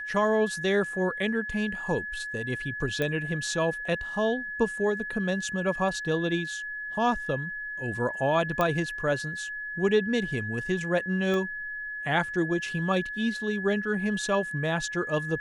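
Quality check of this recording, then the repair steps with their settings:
whine 1.7 kHz -33 dBFS
3.02 s: pop -16 dBFS
8.61 s: pop -13 dBFS
11.34 s: pop -19 dBFS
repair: de-click; band-stop 1.7 kHz, Q 30

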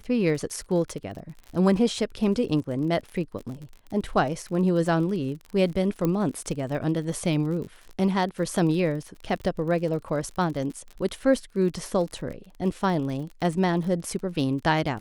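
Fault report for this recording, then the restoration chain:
crackle 41 per s -34 dBFS
6.05 s: pop -13 dBFS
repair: de-click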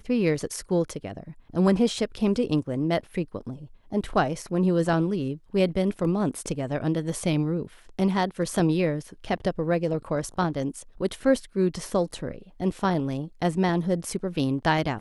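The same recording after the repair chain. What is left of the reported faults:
6.05 s: pop

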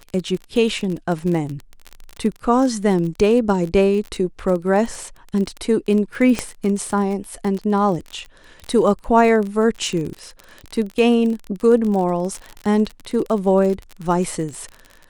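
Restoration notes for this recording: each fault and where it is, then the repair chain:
crackle 30 per s -24 dBFS
6.39 s: pop -7 dBFS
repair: de-click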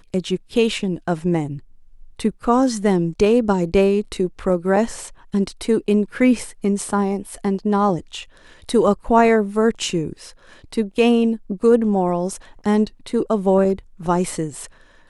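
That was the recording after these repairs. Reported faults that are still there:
nothing left

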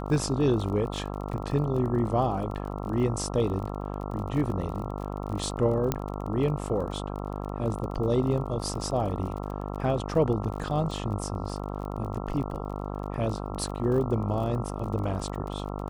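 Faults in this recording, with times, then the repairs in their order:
buzz 50 Hz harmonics 27 -34 dBFS
crackle 33 per s -35 dBFS
5.92 s: pop -11 dBFS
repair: de-click; de-hum 50 Hz, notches 27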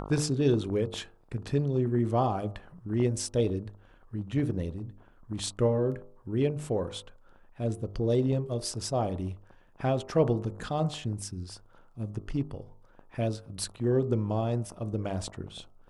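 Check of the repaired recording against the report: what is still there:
5.92 s: pop

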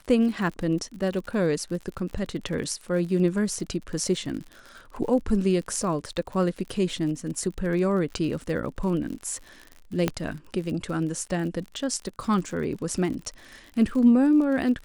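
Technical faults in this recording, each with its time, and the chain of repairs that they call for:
crackle 54 per s -34 dBFS
10.08 s: pop -9 dBFS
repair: de-click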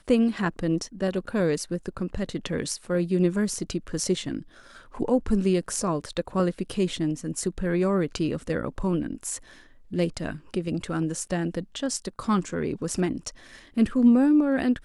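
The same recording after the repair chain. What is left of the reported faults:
10.08 s: pop

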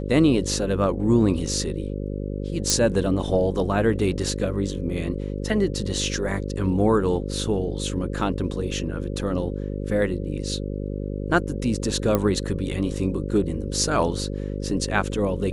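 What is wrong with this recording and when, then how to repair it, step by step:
buzz 50 Hz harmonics 11 -29 dBFS
2.70 s: pop
12.15 s: pop -8 dBFS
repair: de-click; de-hum 50 Hz, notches 11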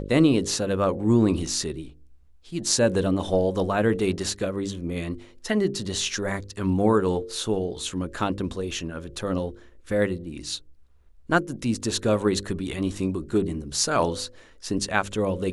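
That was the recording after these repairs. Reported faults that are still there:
nothing left

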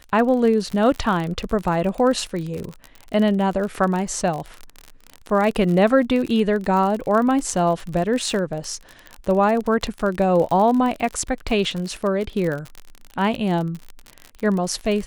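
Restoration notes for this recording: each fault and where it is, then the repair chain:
crackle 43 per s -25 dBFS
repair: de-click

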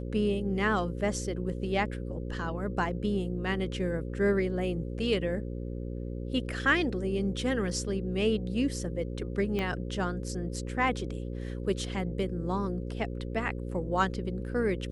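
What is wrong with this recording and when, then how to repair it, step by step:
buzz 60 Hz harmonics 9 -36 dBFS
9.59 s: pop -19 dBFS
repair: de-click; de-hum 60 Hz, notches 9

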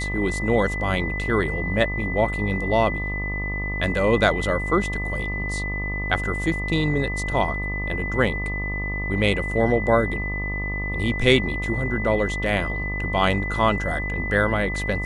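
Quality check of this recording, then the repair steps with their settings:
buzz 50 Hz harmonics 25 -29 dBFS
whine 2 kHz -28 dBFS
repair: de-hum 50 Hz, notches 25; band-stop 2 kHz, Q 30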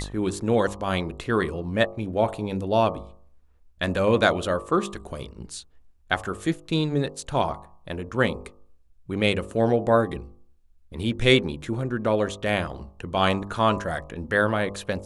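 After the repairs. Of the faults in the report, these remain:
nothing left

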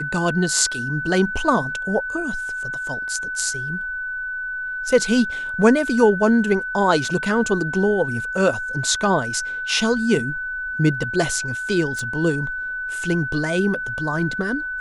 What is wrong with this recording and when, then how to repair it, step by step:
whine 1.5 kHz -25 dBFS
11.99 s: pop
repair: de-click; band-stop 1.5 kHz, Q 30

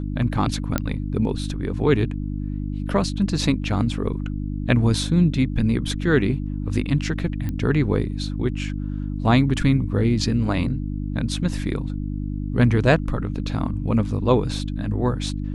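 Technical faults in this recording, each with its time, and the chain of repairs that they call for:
hum 50 Hz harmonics 6 -27 dBFS
0.78 s: pop -7 dBFS
7.49 s: pop -16 dBFS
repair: de-click; de-hum 50 Hz, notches 6

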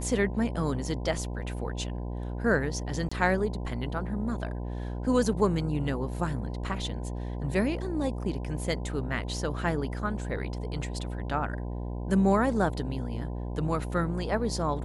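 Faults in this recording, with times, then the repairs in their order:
buzz 60 Hz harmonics 17 -34 dBFS
3.09–3.12 s: dropout 25 ms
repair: de-hum 60 Hz, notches 17; interpolate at 3.09 s, 25 ms

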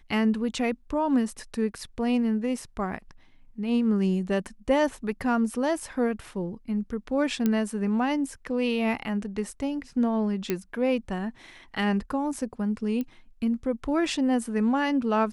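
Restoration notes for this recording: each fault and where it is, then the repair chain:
7.46 s: pop -12 dBFS
10.50 s: pop -12 dBFS
13.01 s: pop -20 dBFS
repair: de-click

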